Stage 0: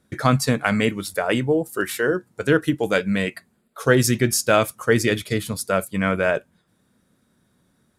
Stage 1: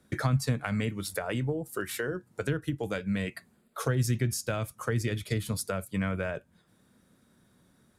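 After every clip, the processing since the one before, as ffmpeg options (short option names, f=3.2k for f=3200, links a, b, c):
-filter_complex "[0:a]acrossover=split=130[a][b];[b]acompressor=threshold=-30dB:ratio=10[c];[a][c]amix=inputs=2:normalize=0"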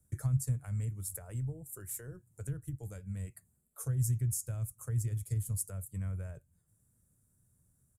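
-af "firequalizer=gain_entry='entry(110,0);entry(210,-18);entry(3700,-28);entry(7400,0)':delay=0.05:min_phase=1"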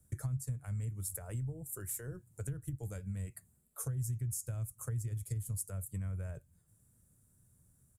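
-af "acompressor=threshold=-40dB:ratio=3,volume=3.5dB"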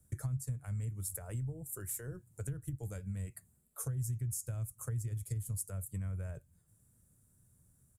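-af anull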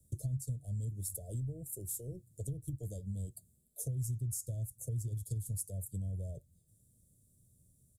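-af "asuperstop=centerf=1500:order=20:qfactor=0.59"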